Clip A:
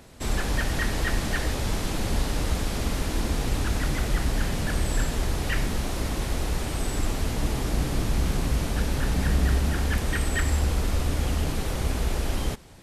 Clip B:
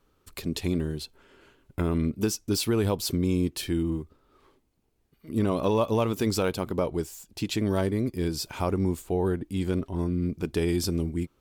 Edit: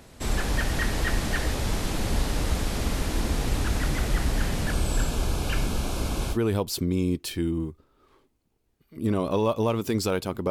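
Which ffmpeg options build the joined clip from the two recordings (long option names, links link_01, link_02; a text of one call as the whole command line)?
ffmpeg -i cue0.wav -i cue1.wav -filter_complex "[0:a]asettb=1/sr,asplit=3[link_01][link_02][link_03];[link_01]atrim=end=4.724[link_04];[link_02]atrim=start=4.72:end=6.38,asetpts=PTS-STARTPTS,afade=type=in:duration=0.004:curve=qsin,afade=type=out:start_time=1.656:duration=0.004:curve=qsin,asuperstop=centerf=1900:order=4:qfactor=4.6[link_05];[link_03]atrim=start=6.376[link_06];[link_04][link_05]acrossfade=duration=0.004:curve1=hsin:curve2=qsin[link_07];[link_07][link_06]acrossfade=duration=0.004:curve1=qsin:curve2=hsin,apad=whole_dur=10.5,atrim=end=10.5,atrim=end=6.38,asetpts=PTS-STARTPTS[link_08];[1:a]atrim=start=2.62:end=6.82,asetpts=PTS-STARTPTS[link_09];[link_08][link_09]acrossfade=duration=0.08:curve1=tri:curve2=tri" out.wav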